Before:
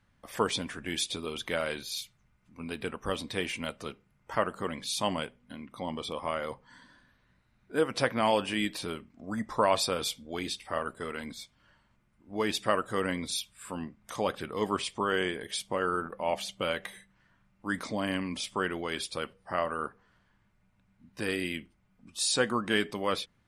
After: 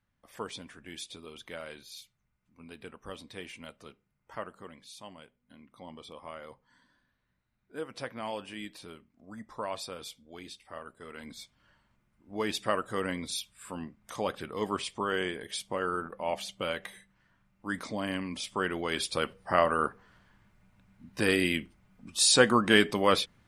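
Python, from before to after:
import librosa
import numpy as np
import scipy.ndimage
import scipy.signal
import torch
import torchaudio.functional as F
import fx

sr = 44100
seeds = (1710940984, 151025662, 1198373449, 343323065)

y = fx.gain(x, sr, db=fx.line((4.41, -10.5), (5.15, -18.5), (5.57, -11.0), (10.99, -11.0), (11.4, -2.0), (18.38, -2.0), (19.36, 6.0)))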